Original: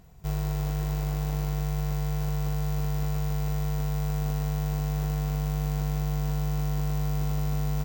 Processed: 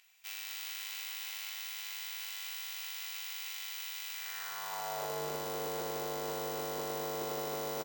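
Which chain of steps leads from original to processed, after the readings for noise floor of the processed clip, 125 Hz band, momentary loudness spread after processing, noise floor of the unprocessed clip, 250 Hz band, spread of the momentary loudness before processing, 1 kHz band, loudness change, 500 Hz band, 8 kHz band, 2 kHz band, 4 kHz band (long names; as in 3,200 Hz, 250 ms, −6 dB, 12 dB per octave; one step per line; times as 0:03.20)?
−43 dBFS, −28.0 dB, 2 LU, −28 dBFS, −17.5 dB, 1 LU, −2.0 dB, −8.5 dB, 0.0 dB, +1.5 dB, +2.5 dB, +5.5 dB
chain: high-pass filter sweep 2,500 Hz → 420 Hz, 0:04.13–0:05.25
on a send: multi-tap delay 50/243/437 ms −16.5/−7/−17.5 dB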